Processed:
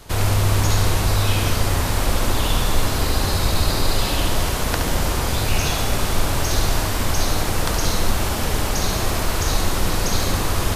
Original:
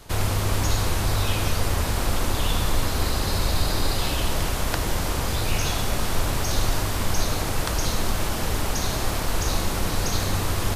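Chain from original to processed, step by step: flutter echo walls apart 11.9 m, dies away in 0.62 s; trim +3 dB

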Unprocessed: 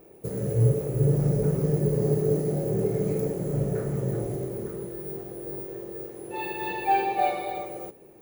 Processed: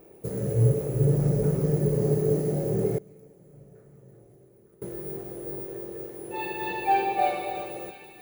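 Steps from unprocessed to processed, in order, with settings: feedback echo behind a high-pass 334 ms, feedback 69%, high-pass 1.6 kHz, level -11 dB; 2.98–4.82 s: inverted gate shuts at -27 dBFS, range -24 dB

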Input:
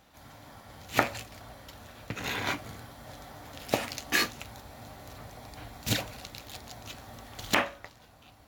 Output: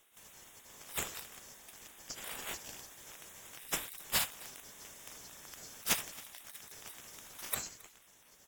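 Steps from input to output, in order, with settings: split-band scrambler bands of 4 kHz; spectral gate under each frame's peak -20 dB weak; delay 269 ms -23 dB; trim +5 dB

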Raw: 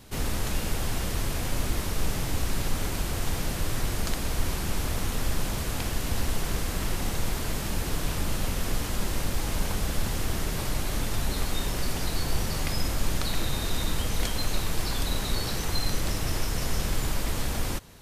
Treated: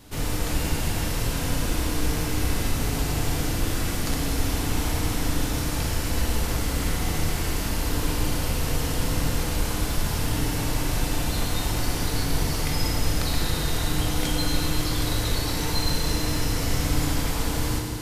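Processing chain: FDN reverb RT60 3.1 s, low-frequency decay 1.2×, high-frequency decay 0.95×, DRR -1 dB

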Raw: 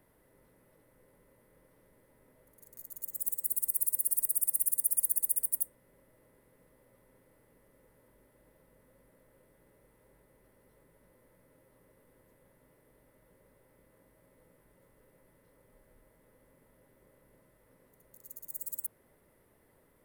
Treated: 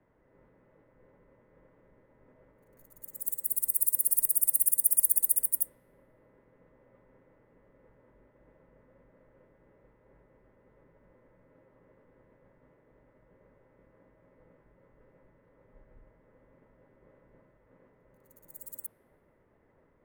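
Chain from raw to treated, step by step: three bands expanded up and down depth 100%; trim +3.5 dB

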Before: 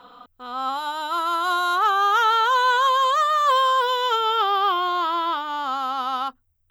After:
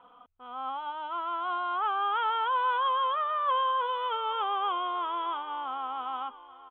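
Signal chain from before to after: rippled Chebyshev low-pass 3.4 kHz, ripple 6 dB; on a send: feedback delay 832 ms, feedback 48%, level -18 dB; on the sum: trim -7 dB

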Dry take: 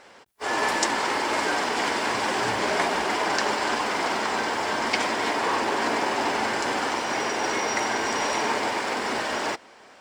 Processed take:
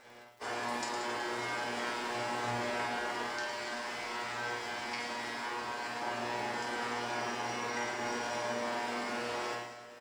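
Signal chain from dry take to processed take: compression 4:1, threshold -31 dBFS, peak gain reduction 11 dB; 3.26–6.00 s: peaking EQ 400 Hz -5 dB 3 oct; crackle 44 per s -42 dBFS; bass shelf 140 Hz +4 dB; feedback comb 120 Hz, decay 0.54 s, harmonics all, mix 90%; reverse bouncing-ball echo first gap 50 ms, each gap 1.2×, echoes 5; trim +5.5 dB

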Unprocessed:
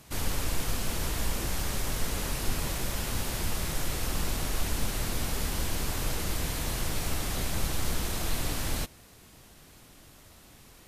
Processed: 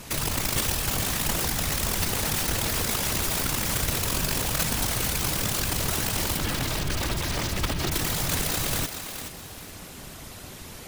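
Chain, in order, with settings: in parallel at +1 dB: compressor with a negative ratio -35 dBFS, ratio -0.5; 6.37–7.92 s: on the sum: LPC vocoder at 8 kHz pitch kept; integer overflow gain 20.5 dB; whisper effect; thinning echo 425 ms, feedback 27%, level -8 dB

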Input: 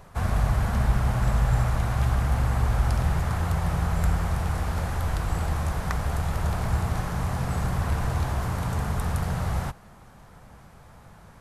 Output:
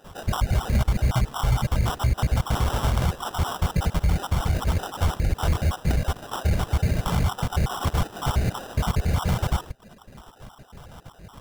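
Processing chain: random holes in the spectrogram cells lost 50%; reverb removal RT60 0.83 s; 2.50–3.08 s: tone controls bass -3 dB, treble +14 dB; peak limiter -21 dBFS, peak gain reduction 10 dB; sample-rate reducer 2.2 kHz, jitter 0%; trim +8 dB

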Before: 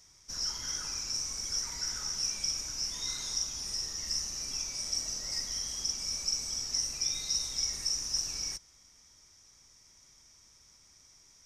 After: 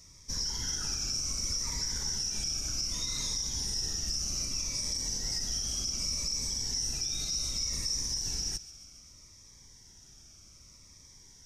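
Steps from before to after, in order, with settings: bass shelf 340 Hz +8.5 dB; peak limiter -27.5 dBFS, peak gain reduction 10 dB; feedback echo behind a high-pass 138 ms, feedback 66%, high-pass 2.2 kHz, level -16.5 dB; Shepard-style phaser falling 0.65 Hz; trim +4 dB

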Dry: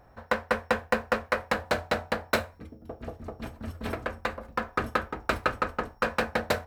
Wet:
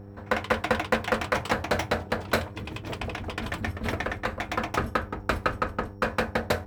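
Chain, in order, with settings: ever faster or slower copies 143 ms, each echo +6 st, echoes 2, each echo -6 dB; mains buzz 100 Hz, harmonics 5, -47 dBFS -3 dB/octave; bass shelf 210 Hz +5.5 dB

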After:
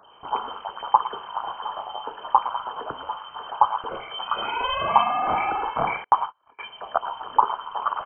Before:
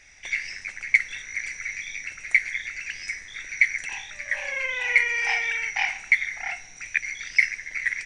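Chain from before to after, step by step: 4.07–5.00 s: bass shelf 340 Hz +10 dB; three bands offset in time highs, lows, mids 30/110 ms, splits 390/1400 Hz; 6.04–6.59 s: gate -27 dBFS, range -36 dB; frequency inversion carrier 3.1 kHz; trim +3 dB

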